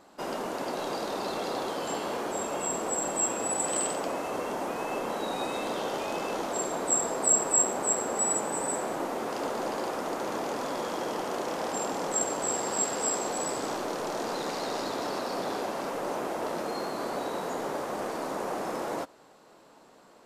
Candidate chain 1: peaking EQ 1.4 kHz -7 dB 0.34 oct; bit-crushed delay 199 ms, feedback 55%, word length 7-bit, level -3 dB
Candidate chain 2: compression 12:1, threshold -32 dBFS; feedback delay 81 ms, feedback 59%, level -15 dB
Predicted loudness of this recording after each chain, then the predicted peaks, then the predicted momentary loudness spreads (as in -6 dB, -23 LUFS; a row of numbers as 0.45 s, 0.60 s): -29.0 LUFS, -35.5 LUFS; -11.0 dBFS, -22.0 dBFS; 7 LU, 3 LU